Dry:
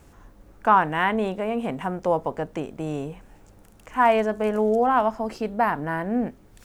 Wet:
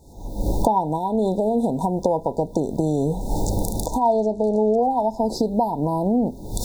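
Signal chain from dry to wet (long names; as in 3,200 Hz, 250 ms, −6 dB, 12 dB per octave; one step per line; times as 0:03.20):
camcorder AGC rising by 63 dB per second
0:04.00–0:04.83: low-pass filter 6,600 Hz 12 dB per octave
brick-wall band-stop 980–3,500 Hz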